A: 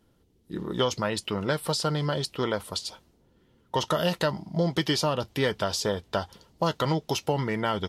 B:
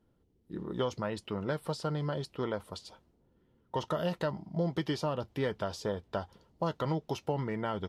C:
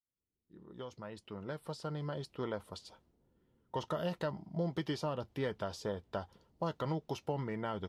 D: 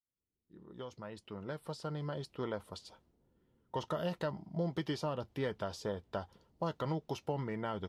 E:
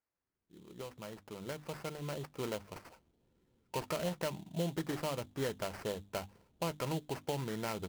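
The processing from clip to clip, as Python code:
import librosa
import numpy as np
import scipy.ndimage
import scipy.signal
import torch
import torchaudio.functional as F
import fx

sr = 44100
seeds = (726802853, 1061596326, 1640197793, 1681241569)

y1 = fx.high_shelf(x, sr, hz=2300.0, db=-11.5)
y1 = F.gain(torch.from_numpy(y1), -5.5).numpy()
y2 = fx.fade_in_head(y1, sr, length_s=2.52)
y2 = F.gain(torch.from_numpy(y2), -4.0).numpy()
y3 = y2
y4 = fx.hum_notches(y3, sr, base_hz=50, count=6)
y4 = fx.sample_hold(y4, sr, seeds[0], rate_hz=3600.0, jitter_pct=20)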